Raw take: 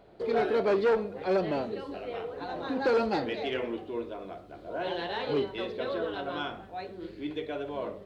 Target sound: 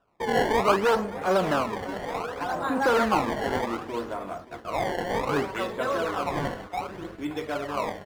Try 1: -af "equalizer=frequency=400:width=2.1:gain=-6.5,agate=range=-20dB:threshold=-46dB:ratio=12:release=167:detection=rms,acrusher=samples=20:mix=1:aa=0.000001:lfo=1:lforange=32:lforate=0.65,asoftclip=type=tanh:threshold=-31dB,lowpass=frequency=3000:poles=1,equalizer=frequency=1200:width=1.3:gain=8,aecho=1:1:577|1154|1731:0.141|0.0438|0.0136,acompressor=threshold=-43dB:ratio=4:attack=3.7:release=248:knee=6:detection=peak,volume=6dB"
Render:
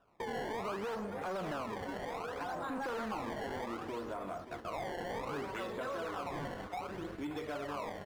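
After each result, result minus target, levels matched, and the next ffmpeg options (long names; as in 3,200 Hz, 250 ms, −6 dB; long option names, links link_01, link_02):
downward compressor: peak gain reduction +13.5 dB; soft clipping: distortion +13 dB
-af "equalizer=frequency=400:width=2.1:gain=-6.5,agate=range=-20dB:threshold=-46dB:ratio=12:release=167:detection=rms,acrusher=samples=20:mix=1:aa=0.000001:lfo=1:lforange=32:lforate=0.65,asoftclip=type=tanh:threshold=-31dB,lowpass=frequency=3000:poles=1,equalizer=frequency=1200:width=1.3:gain=8,aecho=1:1:577|1154|1731:0.141|0.0438|0.0136,volume=6dB"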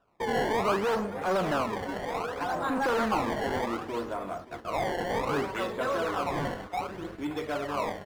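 soft clipping: distortion +13 dB
-af "equalizer=frequency=400:width=2.1:gain=-6.5,agate=range=-20dB:threshold=-46dB:ratio=12:release=167:detection=rms,acrusher=samples=20:mix=1:aa=0.000001:lfo=1:lforange=32:lforate=0.65,asoftclip=type=tanh:threshold=-20dB,lowpass=frequency=3000:poles=1,equalizer=frequency=1200:width=1.3:gain=8,aecho=1:1:577|1154|1731:0.141|0.0438|0.0136,volume=6dB"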